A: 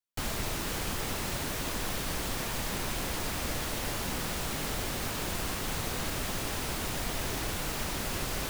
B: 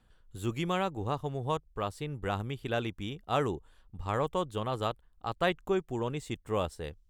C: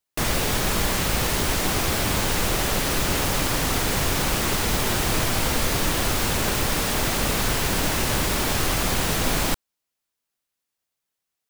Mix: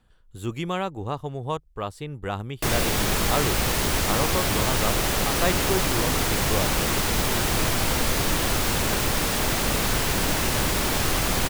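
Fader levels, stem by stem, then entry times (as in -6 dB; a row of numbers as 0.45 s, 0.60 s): mute, +3.0 dB, -0.5 dB; mute, 0.00 s, 2.45 s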